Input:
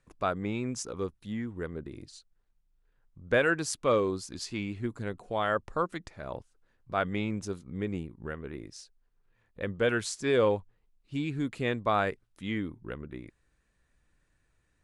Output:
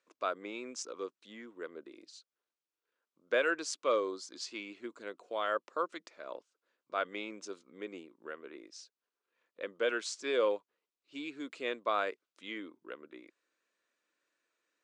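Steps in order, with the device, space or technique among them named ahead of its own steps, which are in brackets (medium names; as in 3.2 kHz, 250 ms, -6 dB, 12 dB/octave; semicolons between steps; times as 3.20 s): phone speaker on a table (cabinet simulation 350–7300 Hz, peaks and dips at 410 Hz -4 dB, 800 Hz -9 dB, 1.8 kHz -5 dB); 3.94–4.38 s: band-stop 2.6 kHz, Q 5.2; trim -2 dB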